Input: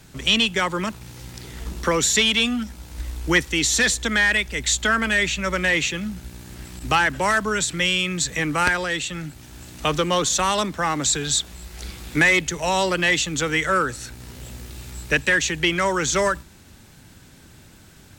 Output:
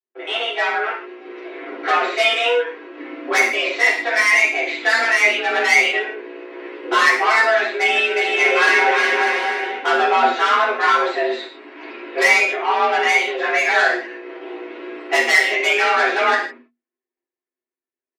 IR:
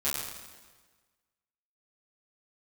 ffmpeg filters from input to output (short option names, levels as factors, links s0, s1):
-filter_complex "[0:a]lowpass=f=2100:w=0.5412,lowpass=f=2100:w=1.3066,agate=range=0.00316:threshold=0.01:ratio=16:detection=peak,equalizer=f=210:t=o:w=1.3:g=-10,aecho=1:1:7.2:0.92,dynaudnorm=f=350:g=9:m=3.76,asoftclip=type=tanh:threshold=0.188,afreqshift=240,asettb=1/sr,asplit=3[s0][s1][s2];[s0]atrim=end=7.594[s3];[s1]atrim=start=7.59:end=9.77,asetpts=PTS-STARTPTS,afade=t=in:d=0.004:c=qsin,afade=t=out:st=2.176:d=0.004:c=qsin,aecho=1:1:360|594|746.1|845|909.2:0.631|0.398|0.251|0.158|0.1,atrim=end_sample=96138[s4];[s2]atrim=start=9.766[s5];[s3][s4]acrossfade=d=0.004:c1=hsin:c2=qsin[s6];[s6][s5]acrossfade=d=0.004:c1=qsin:c2=hsin[s7];[1:a]atrim=start_sample=2205,afade=t=out:st=0.41:d=0.01,atrim=end_sample=18522,asetrate=88200,aresample=44100[s8];[s7][s8]afir=irnorm=-1:irlink=0,volume=1.41"